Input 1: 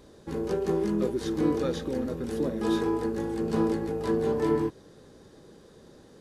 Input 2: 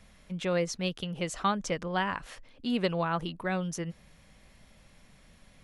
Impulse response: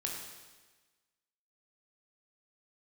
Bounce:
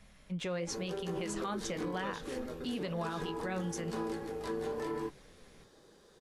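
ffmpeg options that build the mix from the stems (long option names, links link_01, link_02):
-filter_complex "[0:a]equalizer=frequency=130:width=0.31:gain=-10.5,adelay=400,volume=1dB[link_01];[1:a]volume=2dB[link_02];[link_01][link_02]amix=inputs=2:normalize=0,flanger=delay=4.8:depth=8.2:regen=-64:speed=0.99:shape=sinusoidal,alimiter=level_in=4dB:limit=-24dB:level=0:latency=1:release=71,volume=-4dB"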